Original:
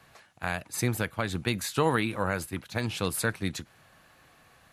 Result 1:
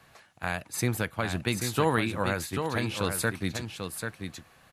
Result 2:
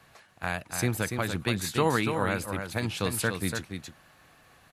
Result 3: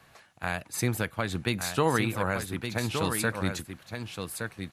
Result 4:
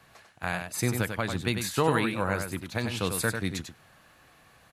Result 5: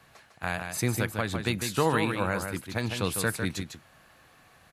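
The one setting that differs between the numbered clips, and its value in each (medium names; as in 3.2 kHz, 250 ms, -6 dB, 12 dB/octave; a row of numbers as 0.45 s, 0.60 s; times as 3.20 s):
delay, time: 789 ms, 288 ms, 1167 ms, 96 ms, 152 ms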